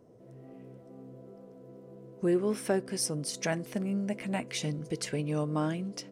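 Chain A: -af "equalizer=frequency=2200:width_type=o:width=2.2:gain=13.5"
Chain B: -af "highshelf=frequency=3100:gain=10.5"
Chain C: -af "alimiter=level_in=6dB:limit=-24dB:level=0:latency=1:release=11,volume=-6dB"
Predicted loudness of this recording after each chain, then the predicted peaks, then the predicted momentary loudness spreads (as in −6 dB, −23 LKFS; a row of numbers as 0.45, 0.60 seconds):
−28.5, −29.0, −37.5 LKFS; −9.0, −8.0, −30.0 dBFS; 6, 9, 14 LU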